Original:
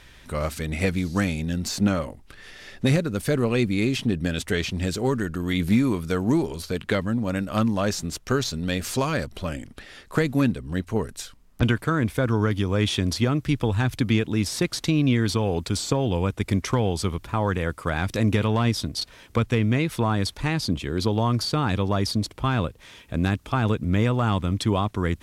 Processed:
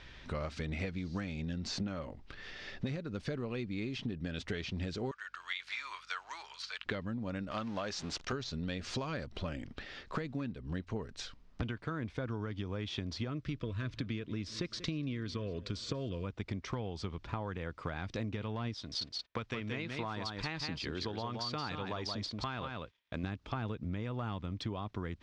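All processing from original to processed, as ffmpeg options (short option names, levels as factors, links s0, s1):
-filter_complex "[0:a]asettb=1/sr,asplit=3[s0][s1][s2];[s0]atrim=end=5.114[s3];[s1]atrim=start=5.11:end=6.86,asetpts=PTS-STARTPTS,afade=t=in:d=0.004:c=qsin,afade=t=out:st=1.746:d=0.004:c=qsin,highpass=f=1100:w=0.5412,highpass=f=1100:w=1.3066,aeval=exprs='val(0)+0.000316*(sin(2*PI*50*n/s)+sin(2*PI*2*50*n/s)/2+sin(2*PI*3*50*n/s)/3+sin(2*PI*4*50*n/s)/4+sin(2*PI*5*50*n/s)/5)':c=same[s4];[s2]atrim=start=6.856[s5];[s3][s4]acrossfade=d=0.004:c1=hsin:c2=qsin[s6];[s6][s5]acrossfade=d=0.004:c1=qsin:c2=hsin,asettb=1/sr,asplit=3[s7][s8][s9];[s7]atrim=end=7.514[s10];[s8]atrim=start=7.51:end=8.33,asetpts=PTS-STARTPTS,afade=t=in:d=0.004:c=qsin,afade=t=out:st=0.816:d=0.004:c=qsin,aeval=exprs='val(0)+0.5*0.0178*sgn(val(0))':c=same,lowshelf=f=330:g=-11.5[s11];[s9]atrim=start=8.326[s12];[s10][s11]acrossfade=d=0.004:c1=hsin:c2=qsin[s13];[s13][s12]acrossfade=d=0.004:c1=qsin:c2=hsin,asettb=1/sr,asplit=3[s14][s15][s16];[s14]atrim=end=13.304[s17];[s15]atrim=start=13.3:end=16.26,asetpts=PTS-STARTPTS,afade=t=in:d=0.004:c=qsin,afade=t=out:st=2.956:d=0.004:c=qsin,asuperstop=centerf=810:order=8:qfactor=3,aecho=1:1:188|376|564:0.0841|0.0353|0.0148,atrim=end_sample=130536[s18];[s16]atrim=start=16.256[s19];[s17][s18]acrossfade=d=0.004:c1=hsin:c2=qsin[s20];[s20][s19]acrossfade=d=0.004:c1=qsin:c2=hsin,asettb=1/sr,asplit=3[s21][s22][s23];[s21]atrim=end=18.744[s24];[s22]atrim=start=18.74:end=23.24,asetpts=PTS-STARTPTS,afade=t=in:d=0.004:c=qsin,afade=t=out:st=4.496:d=0.004:c=qsin,agate=range=0.02:threshold=0.00708:ratio=16:release=100:detection=peak,lowshelf=f=470:g=-10,aecho=1:1:175:0.501,atrim=end_sample=198450[s25];[s23]atrim=start=23.236[s26];[s24][s25]acrossfade=d=0.004:c1=hsin:c2=qsin[s27];[s27][s26]acrossfade=d=0.004:c1=qsin:c2=hsin,lowpass=f=5400:w=0.5412,lowpass=f=5400:w=1.3066,acompressor=threshold=0.0282:ratio=12,volume=0.708"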